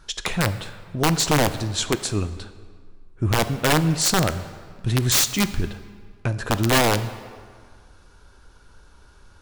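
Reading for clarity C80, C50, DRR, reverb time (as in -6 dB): 14.5 dB, 13.0 dB, 11.5 dB, 1.8 s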